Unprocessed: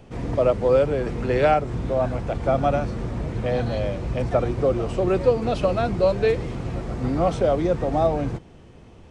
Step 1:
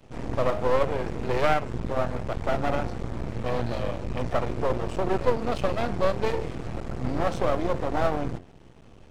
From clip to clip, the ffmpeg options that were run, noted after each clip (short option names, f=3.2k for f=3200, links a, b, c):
-af "bandreject=f=88.89:t=h:w=4,bandreject=f=177.78:t=h:w=4,bandreject=f=266.67:t=h:w=4,bandreject=f=355.56:t=h:w=4,bandreject=f=444.45:t=h:w=4,bandreject=f=533.34:t=h:w=4,bandreject=f=622.23:t=h:w=4,bandreject=f=711.12:t=h:w=4,bandreject=f=800.01:t=h:w=4,bandreject=f=888.9:t=h:w=4,bandreject=f=977.79:t=h:w=4,bandreject=f=1.06668k:t=h:w=4,bandreject=f=1.15557k:t=h:w=4,bandreject=f=1.24446k:t=h:w=4,bandreject=f=1.33335k:t=h:w=4,bandreject=f=1.42224k:t=h:w=4,bandreject=f=1.51113k:t=h:w=4,bandreject=f=1.60002k:t=h:w=4,bandreject=f=1.68891k:t=h:w=4,bandreject=f=1.7778k:t=h:w=4,bandreject=f=1.86669k:t=h:w=4,bandreject=f=1.95558k:t=h:w=4,bandreject=f=2.04447k:t=h:w=4,bandreject=f=2.13336k:t=h:w=4,bandreject=f=2.22225k:t=h:w=4,bandreject=f=2.31114k:t=h:w=4,bandreject=f=2.40003k:t=h:w=4,bandreject=f=2.48892k:t=h:w=4,bandreject=f=2.57781k:t=h:w=4,bandreject=f=2.6667k:t=h:w=4,bandreject=f=2.75559k:t=h:w=4,bandreject=f=2.84448k:t=h:w=4,bandreject=f=2.93337k:t=h:w=4,bandreject=f=3.02226k:t=h:w=4,bandreject=f=3.11115k:t=h:w=4,aeval=exprs='max(val(0),0)':c=same"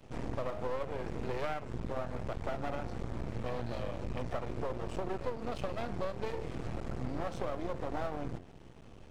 -af "acompressor=threshold=-30dB:ratio=4,volume=-2.5dB"